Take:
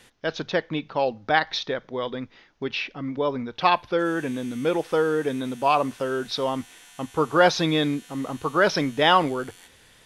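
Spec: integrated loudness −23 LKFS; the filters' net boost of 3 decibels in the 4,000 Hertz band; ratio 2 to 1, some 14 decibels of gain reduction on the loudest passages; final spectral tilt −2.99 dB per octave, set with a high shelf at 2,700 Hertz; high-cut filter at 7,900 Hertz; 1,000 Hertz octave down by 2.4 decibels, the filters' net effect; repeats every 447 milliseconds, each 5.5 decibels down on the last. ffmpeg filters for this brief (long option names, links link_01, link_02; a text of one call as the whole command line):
ffmpeg -i in.wav -af "lowpass=7900,equalizer=frequency=1000:width_type=o:gain=-3,highshelf=frequency=2700:gain=-3.5,equalizer=frequency=4000:width_type=o:gain=7,acompressor=threshold=-40dB:ratio=2,aecho=1:1:447|894|1341|1788|2235|2682|3129:0.531|0.281|0.149|0.079|0.0419|0.0222|0.0118,volume=11.5dB" out.wav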